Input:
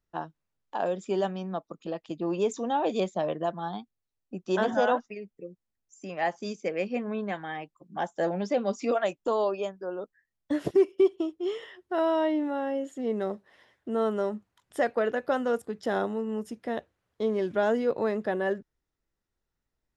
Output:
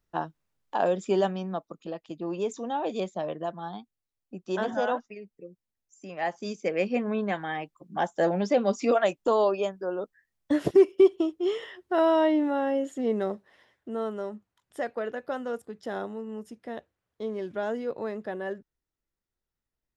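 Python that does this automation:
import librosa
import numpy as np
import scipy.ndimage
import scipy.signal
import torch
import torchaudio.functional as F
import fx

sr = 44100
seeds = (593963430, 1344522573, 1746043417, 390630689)

y = fx.gain(x, sr, db=fx.line((1.1, 4.0), (2.05, -3.0), (6.09, -3.0), (6.82, 3.5), (12.99, 3.5), (14.15, -5.5)))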